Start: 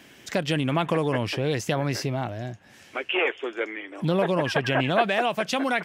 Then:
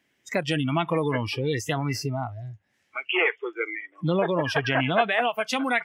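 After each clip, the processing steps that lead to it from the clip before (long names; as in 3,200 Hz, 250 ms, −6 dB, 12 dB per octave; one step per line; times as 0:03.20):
noise reduction from a noise print of the clip's start 21 dB
parametric band 2,000 Hz +8 dB 0.21 octaves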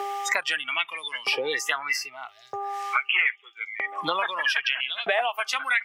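hum with harmonics 400 Hz, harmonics 3, −54 dBFS −4 dB per octave
auto-filter high-pass saw up 0.79 Hz 570–4,900 Hz
multiband upward and downward compressor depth 100%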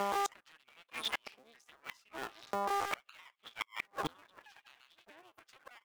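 sub-harmonics by changed cycles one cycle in 2, muted
gate with flip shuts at −21 dBFS, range −32 dB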